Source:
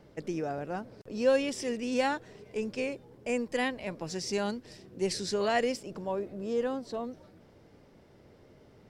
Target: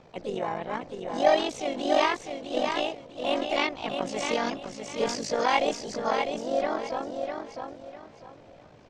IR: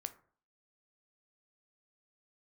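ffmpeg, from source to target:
-filter_complex "[0:a]tremolo=f=46:d=0.824,lowpass=frequency=4600:width=0.5412,lowpass=frequency=4600:width=1.3066,equalizer=frequency=260:width_type=o:width=1.1:gain=-2.5,asetrate=50951,aresample=44100,atempo=0.865537,lowshelf=frequency=370:gain=-3.5,asplit=2[link_01][link_02];[link_02]aecho=0:1:652|1304|1956|2608:0.531|0.149|0.0416|0.0117[link_03];[link_01][link_03]amix=inputs=2:normalize=0,asplit=3[link_04][link_05][link_06];[link_05]asetrate=55563,aresample=44100,atempo=0.793701,volume=-5dB[link_07];[link_06]asetrate=58866,aresample=44100,atempo=0.749154,volume=-16dB[link_08];[link_04][link_07][link_08]amix=inputs=3:normalize=0,volume=7.5dB"

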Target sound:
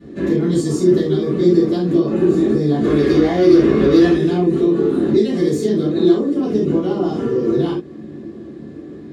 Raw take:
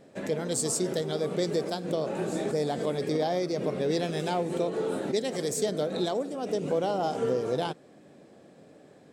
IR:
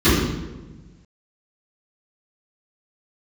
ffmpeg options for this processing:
-filter_complex "[0:a]acompressor=threshold=-35dB:ratio=2,asplit=3[link_01][link_02][link_03];[link_01]afade=type=out:start_time=2.82:duration=0.02[link_04];[link_02]asplit=2[link_05][link_06];[link_06]highpass=frequency=720:poles=1,volume=20dB,asoftclip=type=tanh:threshold=-23dB[link_07];[link_05][link_07]amix=inputs=2:normalize=0,lowpass=frequency=6500:poles=1,volume=-6dB,afade=type=in:start_time=2.82:duration=0.02,afade=type=out:start_time=4.1:duration=0.02[link_08];[link_03]afade=type=in:start_time=4.1:duration=0.02[link_09];[link_04][link_08][link_09]amix=inputs=3:normalize=0[link_10];[1:a]atrim=start_sample=2205,atrim=end_sample=3969[link_11];[link_10][link_11]afir=irnorm=-1:irlink=0,volume=-11dB"

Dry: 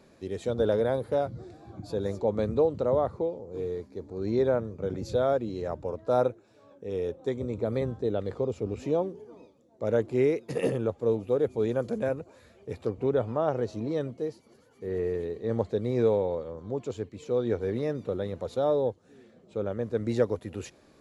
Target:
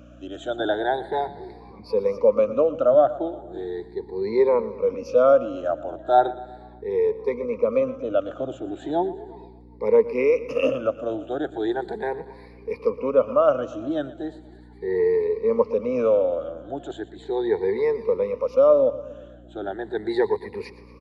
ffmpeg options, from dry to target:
ffmpeg -i in.wav -filter_complex "[0:a]afftfilt=real='re*pow(10,22/40*sin(2*PI*(0.88*log(max(b,1)*sr/1024/100)/log(2)-(0.37)*(pts-256)/sr)))':imag='im*pow(10,22/40*sin(2*PI*(0.88*log(max(b,1)*sr/1024/100)/log(2)-(0.37)*(pts-256)/sr)))':win_size=1024:overlap=0.75,bandreject=frequency=60:width_type=h:width=6,bandreject=frequency=120:width_type=h:width=6,adynamicequalizer=threshold=0.00891:dfrequency=940:dqfactor=2.8:tfrequency=940:tqfactor=2.8:attack=5:release=100:ratio=0.375:range=2.5:mode=boostabove:tftype=bell,aeval=exprs='val(0)+0.0158*(sin(2*PI*60*n/s)+sin(2*PI*2*60*n/s)/2+sin(2*PI*3*60*n/s)/3+sin(2*PI*4*60*n/s)/4+sin(2*PI*5*60*n/s)/5)':channel_layout=same,acrossover=split=130|1200[link_01][link_02][link_03];[link_01]alimiter=level_in=9dB:limit=-24dB:level=0:latency=1:release=205,volume=-9dB[link_04];[link_04][link_02][link_03]amix=inputs=3:normalize=0,acrossover=split=290 4500:gain=0.178 1 0.158[link_05][link_06][link_07];[link_05][link_06][link_07]amix=inputs=3:normalize=0,asplit=2[link_08][link_09];[link_09]aecho=0:1:118|236|354|472|590:0.141|0.0777|0.0427|0.0235|0.0129[link_10];[link_08][link_10]amix=inputs=2:normalize=0,volume=2dB" out.wav

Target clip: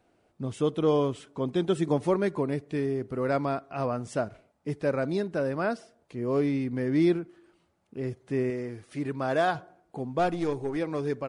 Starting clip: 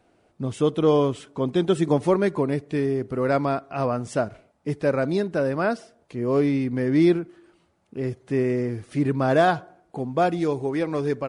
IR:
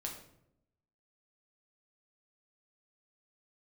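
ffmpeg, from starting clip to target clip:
-filter_complex "[0:a]asettb=1/sr,asplit=3[link_01][link_02][link_03];[link_01]atrim=end=8.504[link_04];[link_02]atrim=start=8.5:end=9.55,asetpts=PTS-STARTPTS,afade=type=in:duration=0.004:curve=qsin,afade=type=out:start_time=1.046:duration=0.004:curve=qsin,lowshelf=frequency=350:gain=-7[link_05];[link_03]atrim=start=9.546[link_06];[link_04][link_05]acrossfade=duration=0.004:curve1=hsin:curve2=qsin[link_07];[link_07][link_06]acrossfade=duration=0.004:curve1=qsin:curve2=hsin,asettb=1/sr,asplit=3[link_08][link_09][link_10];[link_08]atrim=end=10.194[link_11];[link_09]atrim=start=10.19:end=10.77,asetpts=PTS-STARTPTS,afade=type=in:duration=0.004:curve=qsin,afade=type=out:start_time=0.576:duration=0.004:curve=qsin,aeval=exprs='0.316*(cos(1*acos(clip(val(0)/0.316,-1,1)))-cos(1*PI/2))+0.0141*(cos(8*acos(clip(val(0)/0.316,-1,1)))-cos(8*PI/2))':channel_layout=same[link_12];[link_10]atrim=start=10.766[link_13];[link_11][link_12]acrossfade=duration=0.004:curve1=hsin:curve2=qsin[link_14];[link_14][link_13]acrossfade=duration=0.004:curve1=qsin:curve2=hsin,volume=-5dB"

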